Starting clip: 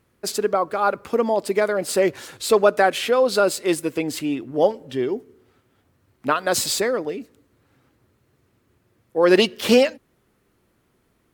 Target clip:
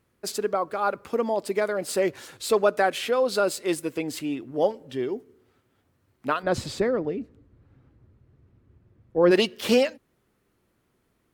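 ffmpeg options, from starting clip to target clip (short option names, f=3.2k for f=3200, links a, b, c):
-filter_complex "[0:a]asplit=3[a][b][c];[a]afade=t=out:st=6.42:d=0.02[d];[b]aemphasis=mode=reproduction:type=riaa,afade=t=in:st=6.42:d=0.02,afade=t=out:st=9.3:d=0.02[e];[c]afade=t=in:st=9.3:d=0.02[f];[d][e][f]amix=inputs=3:normalize=0,volume=-5dB"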